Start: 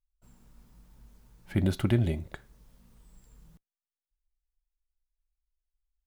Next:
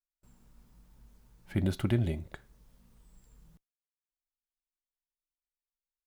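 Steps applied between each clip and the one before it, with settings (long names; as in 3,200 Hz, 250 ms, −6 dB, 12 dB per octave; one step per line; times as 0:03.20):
noise gate with hold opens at −53 dBFS
level −3 dB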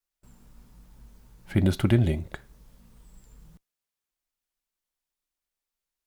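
pitch vibrato 5.1 Hz 36 cents
level +7 dB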